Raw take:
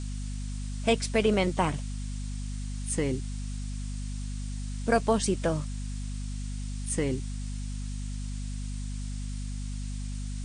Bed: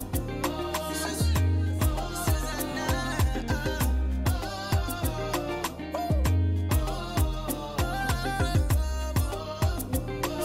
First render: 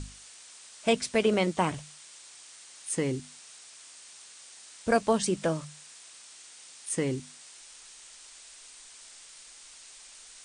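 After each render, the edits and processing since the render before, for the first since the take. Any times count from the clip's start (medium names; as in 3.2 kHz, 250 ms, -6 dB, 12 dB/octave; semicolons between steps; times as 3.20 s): hum notches 50/100/150/200/250 Hz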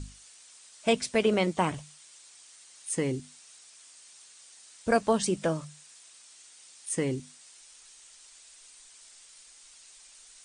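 noise reduction 6 dB, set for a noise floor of -51 dBFS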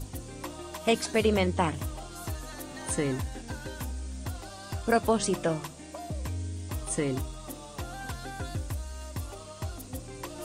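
add bed -10 dB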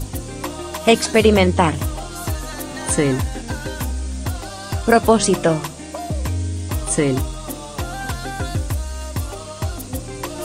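trim +11.5 dB; peak limiter -1 dBFS, peak gain reduction 1.5 dB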